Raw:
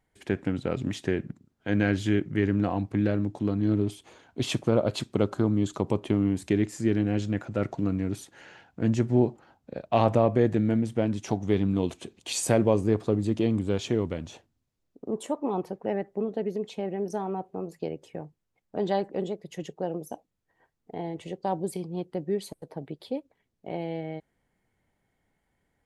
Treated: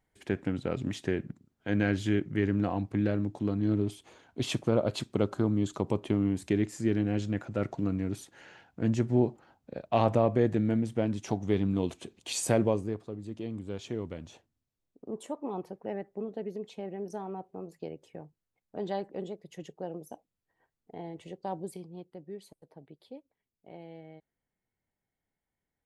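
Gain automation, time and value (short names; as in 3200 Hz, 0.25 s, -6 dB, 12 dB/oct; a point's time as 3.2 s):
12.64 s -3 dB
13.09 s -15 dB
14.25 s -7 dB
21.6 s -7 dB
22.16 s -14 dB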